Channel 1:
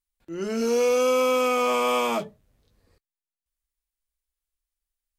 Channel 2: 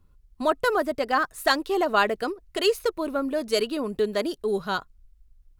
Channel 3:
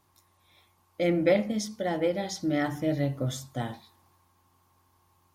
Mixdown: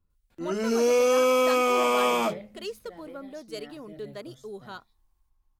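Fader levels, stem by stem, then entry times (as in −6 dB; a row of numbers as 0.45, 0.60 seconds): 0.0, −14.0, −20.0 decibels; 0.10, 0.00, 1.05 seconds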